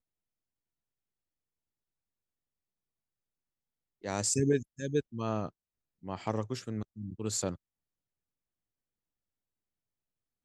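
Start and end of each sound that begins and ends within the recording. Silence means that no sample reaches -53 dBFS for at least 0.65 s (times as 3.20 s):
4.04–7.56 s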